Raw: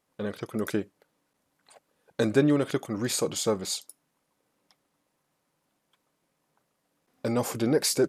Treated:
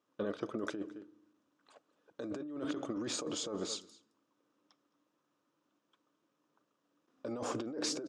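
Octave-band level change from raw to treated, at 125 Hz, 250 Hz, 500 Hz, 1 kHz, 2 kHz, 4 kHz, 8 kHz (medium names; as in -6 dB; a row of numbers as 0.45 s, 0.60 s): -18.0 dB, -11.5 dB, -13.0 dB, -8.5 dB, -11.5 dB, -8.0 dB, -10.5 dB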